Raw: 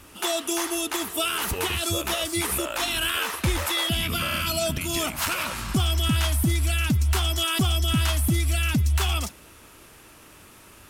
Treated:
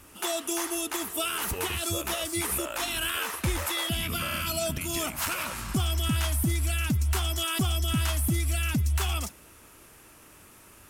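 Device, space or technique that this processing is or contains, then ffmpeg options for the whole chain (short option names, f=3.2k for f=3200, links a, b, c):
exciter from parts: -filter_complex "[0:a]asplit=2[a][b];[b]highpass=3.7k,asoftclip=type=tanh:threshold=-26.5dB,highpass=2.8k,volume=-6.5dB[c];[a][c]amix=inputs=2:normalize=0,volume=-4dB"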